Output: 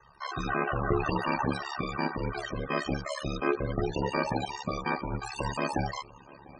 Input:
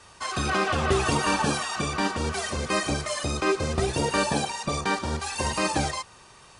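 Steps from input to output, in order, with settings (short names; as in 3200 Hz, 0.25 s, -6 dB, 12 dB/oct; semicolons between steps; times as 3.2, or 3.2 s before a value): swung echo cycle 0.93 s, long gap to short 3:1, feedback 51%, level -22.5 dB; loudest bins only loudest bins 32; ring modulator 35 Hz; gain -1 dB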